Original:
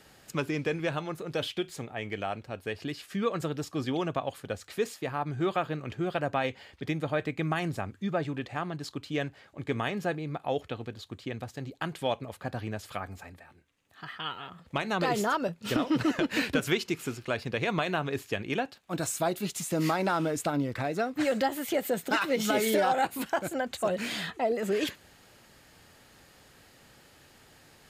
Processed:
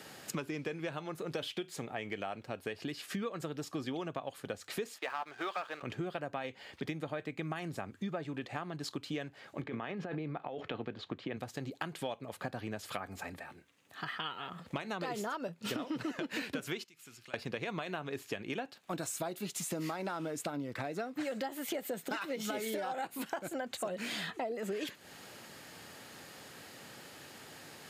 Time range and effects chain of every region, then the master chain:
0:04.98–0:05.83: high-pass filter 830 Hz + high-frequency loss of the air 110 metres + leveller curve on the samples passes 2
0:09.62–0:11.37: compressor whose output falls as the input rises −36 dBFS + band-pass filter 110–2,800 Hz
0:16.84–0:17.34: guitar amp tone stack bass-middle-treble 5-5-5 + downward compressor 3 to 1, threshold −58 dBFS
whole clip: high-pass filter 140 Hz 12 dB per octave; downward compressor 6 to 1, threshold −42 dBFS; level +6 dB

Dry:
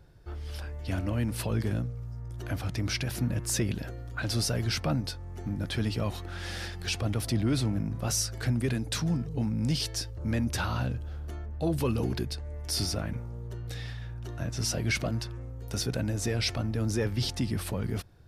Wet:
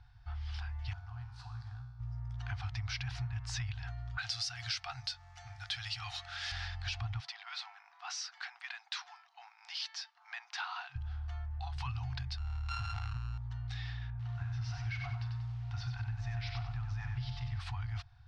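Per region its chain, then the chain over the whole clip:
0:00.93–0:02.00: flat-topped bell 2,400 Hz −10.5 dB 1.1 octaves + tuned comb filter 67 Hz, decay 1.1 s, mix 80% + highs frequency-modulated by the lows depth 0.14 ms
0:04.18–0:06.52: RIAA equalisation recording + notch filter 1,000 Hz, Q 5.4
0:07.20–0:10.96: Bessel high-pass filter 900 Hz, order 8 + high-frequency loss of the air 55 metres
0:12.38–0:13.38: samples sorted by size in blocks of 32 samples + low-shelf EQ 110 Hz +9 dB + saturating transformer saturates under 250 Hz
0:14.10–0:17.60: head-to-tape spacing loss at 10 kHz 23 dB + double-tracking delay 41 ms −12.5 dB + feedback echo at a low word length 94 ms, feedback 35%, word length 9 bits, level −5 dB
whole clip: brick-wall band-stop 130–690 Hz; low-pass filter 5,100 Hz 24 dB per octave; downward compressor, threshold −33 dBFS; level −1.5 dB

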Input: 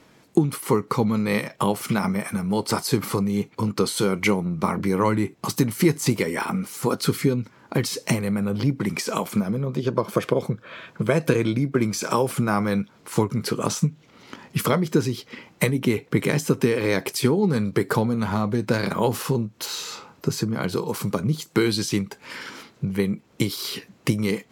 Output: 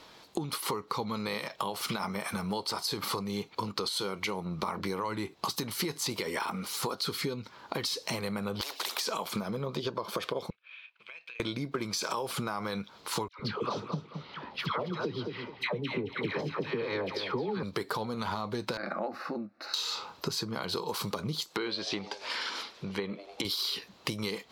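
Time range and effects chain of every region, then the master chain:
0:08.61–0:09.01: elliptic high-pass filter 400 Hz, stop band 60 dB + every bin compressed towards the loudest bin 4 to 1
0:10.50–0:11.40: mu-law and A-law mismatch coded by A + resonant band-pass 2,500 Hz, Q 8.2 + downward compressor 4 to 1, threshold −45 dBFS
0:13.28–0:17.63: high-frequency loss of the air 310 metres + all-pass dispersion lows, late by 112 ms, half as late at 980 Hz + repeating echo 217 ms, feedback 25%, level −12.5 dB
0:18.77–0:19.74: high-pass filter 160 Hz + high-frequency loss of the air 330 metres + phaser with its sweep stopped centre 650 Hz, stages 8
0:21.44–0:23.45: parametric band 120 Hz −11 dB 0.99 octaves + echo with shifted repeats 98 ms, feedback 64%, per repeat +100 Hz, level −21.5 dB + treble cut that deepens with the level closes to 2,600 Hz, closed at −21.5 dBFS
whole clip: octave-band graphic EQ 125/250/1,000/2,000/4,000/8,000 Hz −8/−6/+5/−3/+11/−4 dB; brickwall limiter −13.5 dBFS; downward compressor, threshold −30 dBFS

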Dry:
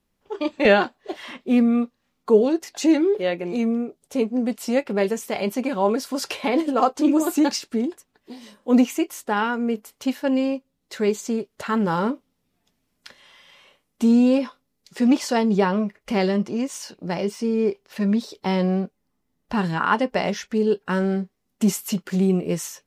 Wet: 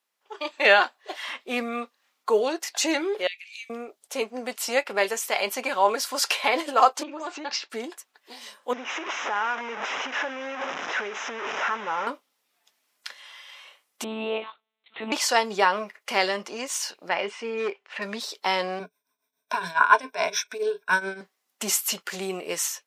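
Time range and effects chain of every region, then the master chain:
0:03.27–0:03.70: Butterworth high-pass 2,300 Hz + high-shelf EQ 6,600 Hz −9 dB + downward compressor 1.5 to 1, threshold −44 dBFS
0:07.03–0:07.70: Bessel low-pass filter 3,500 Hz, order 8 + downward compressor, threshold −25 dBFS
0:08.73–0:12.07: linear delta modulator 32 kbit/s, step −21 dBFS + moving average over 10 samples + downward compressor 5 to 1, threshold −25 dBFS
0:14.04–0:15.12: one-pitch LPC vocoder at 8 kHz 220 Hz + parametric band 1,700 Hz −6.5 dB 0.5 octaves + notch filter 560 Hz
0:17.09–0:18.02: high shelf with overshoot 3,600 Hz −10 dB, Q 1.5 + gain into a clipping stage and back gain 15.5 dB + low-pass filter 8,000 Hz 24 dB per octave
0:18.79–0:21.21: EQ curve with evenly spaced ripples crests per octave 1.6, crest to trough 17 dB + shaped tremolo triangle 7.1 Hz, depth 85%
whole clip: high-pass filter 850 Hz 12 dB per octave; automatic gain control gain up to 6 dB

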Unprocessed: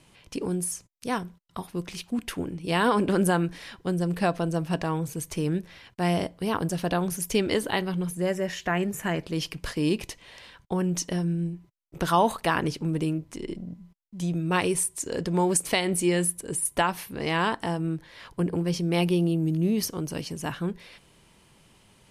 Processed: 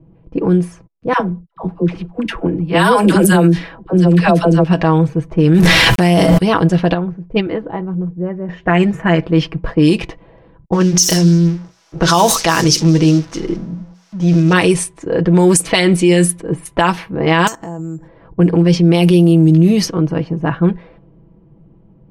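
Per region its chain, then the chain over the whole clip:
0:01.13–0:04.64: high-shelf EQ 7,700 Hz +6.5 dB + all-pass dispersion lows, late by 76 ms, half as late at 630 Hz
0:05.54–0:06.38: mu-law and A-law mismatch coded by mu + envelope flattener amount 100%
0:06.94–0:08.49: noise gate −22 dBFS, range −8 dB + high-frequency loss of the air 190 metres
0:10.72–0:14.53: spike at every zero crossing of −28 dBFS + parametric band 5,700 Hz +14.5 dB + mains-hum notches 60/120/180/240/300/360/420/480/540 Hz
0:17.47–0:18.08: downward compressor 5 to 1, threshold −40 dBFS + bad sample-rate conversion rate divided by 6×, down filtered, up zero stuff
whole clip: low-pass that shuts in the quiet parts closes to 350 Hz, open at −19 dBFS; comb filter 6.1 ms, depth 57%; boost into a limiter +14.5 dB; level −1 dB

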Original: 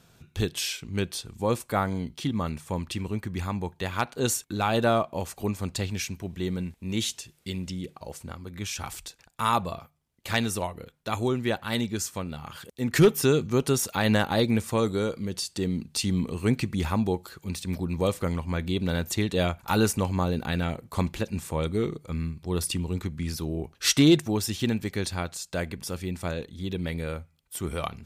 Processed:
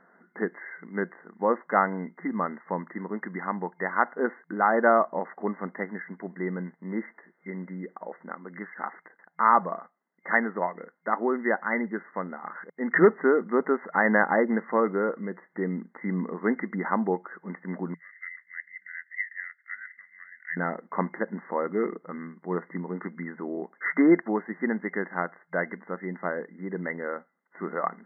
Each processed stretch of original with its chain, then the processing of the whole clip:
0:17.94–0:20.57: gain on one half-wave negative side −3 dB + elliptic high-pass filter 1,900 Hz, stop band 50 dB + high-shelf EQ 2,400 Hz +7.5 dB
whole clip: spectral tilt +3 dB per octave; brick-wall band-pass 170–2,100 Hz; level +5 dB

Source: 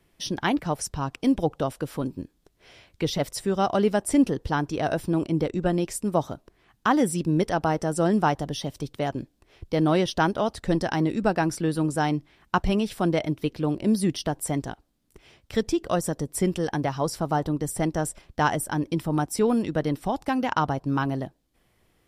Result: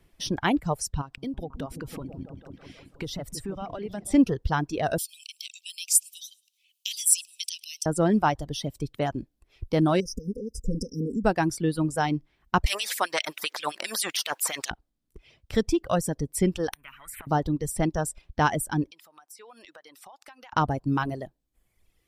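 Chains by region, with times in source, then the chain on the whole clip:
0:01.01–0:04.14: downward compressor 4 to 1, threshold −32 dBFS + echo whose low-pass opens from repeat to repeat 163 ms, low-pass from 200 Hz, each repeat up 1 octave, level −3 dB
0:04.98–0:07.86: Butterworth high-pass 2,500 Hz 72 dB per octave + parametric band 12,000 Hz +14.5 dB 2.8 octaves + repeating echo 106 ms, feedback 48%, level −17.5 dB
0:10.00–0:11.25: comb filter 4.4 ms, depth 100% + downward compressor 3 to 1, threshold −26 dBFS + linear-phase brick-wall band-stop 560–4,900 Hz
0:12.66–0:14.71: parametric band 560 Hz +10 dB 1.5 octaves + auto-filter high-pass sine 7.6 Hz 990–2,900 Hz + every bin compressed towards the loudest bin 2 to 1
0:16.73–0:17.27: drawn EQ curve 210 Hz 0 dB, 340 Hz −20 dB, 510 Hz −30 dB, 720 Hz −19 dB, 2,000 Hz +15 dB, 5,300 Hz −28 dB, 7,900 Hz −2 dB, 14,000 Hz +3 dB + gate with flip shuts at −29 dBFS, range −31 dB + every bin compressed towards the loudest bin 10 to 1
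0:18.91–0:20.53: high-pass filter 1,000 Hz + downward compressor 8 to 1, threshold −44 dBFS
whole clip: reverb reduction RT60 1.4 s; low-shelf EQ 86 Hz +8.5 dB

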